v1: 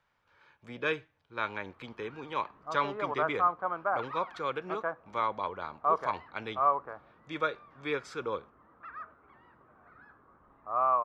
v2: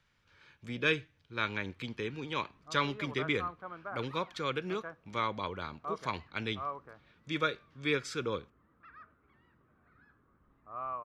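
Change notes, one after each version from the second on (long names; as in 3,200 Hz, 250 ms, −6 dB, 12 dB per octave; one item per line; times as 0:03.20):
speech +9.0 dB
master: add parametric band 820 Hz −15 dB 2.1 octaves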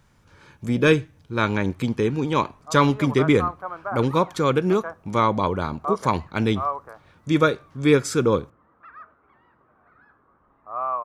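speech: remove three-way crossover with the lows and the highs turned down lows −16 dB, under 510 Hz, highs −21 dB, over 4,200 Hz
master: add parametric band 820 Hz +15 dB 2.1 octaves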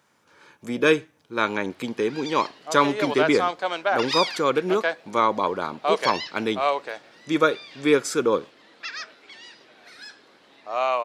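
background: remove transistor ladder low-pass 1,300 Hz, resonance 70%
master: add high-pass filter 310 Hz 12 dB per octave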